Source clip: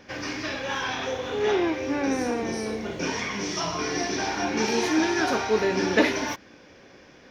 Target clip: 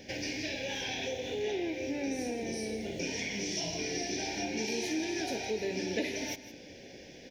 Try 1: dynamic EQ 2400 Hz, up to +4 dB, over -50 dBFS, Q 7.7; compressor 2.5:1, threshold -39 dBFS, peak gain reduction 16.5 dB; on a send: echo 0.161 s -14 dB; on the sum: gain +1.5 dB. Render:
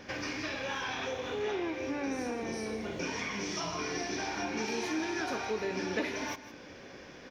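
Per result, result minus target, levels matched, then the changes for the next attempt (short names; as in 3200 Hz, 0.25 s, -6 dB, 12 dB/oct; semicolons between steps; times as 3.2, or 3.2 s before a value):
1000 Hz band +6.0 dB; 8000 Hz band -3.5 dB
add after dynamic EQ: Butterworth band-stop 1200 Hz, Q 1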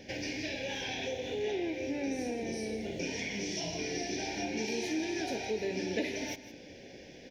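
8000 Hz band -2.5 dB
add after compressor: high shelf 5500 Hz +6 dB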